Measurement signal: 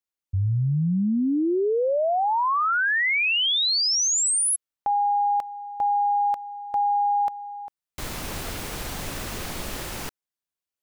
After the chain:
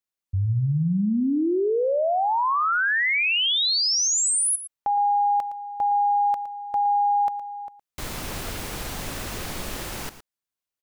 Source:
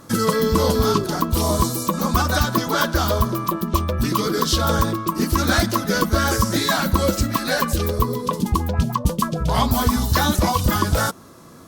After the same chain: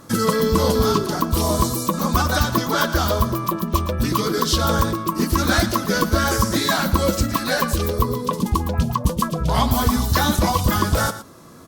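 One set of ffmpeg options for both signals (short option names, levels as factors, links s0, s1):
-af "aecho=1:1:114:0.211"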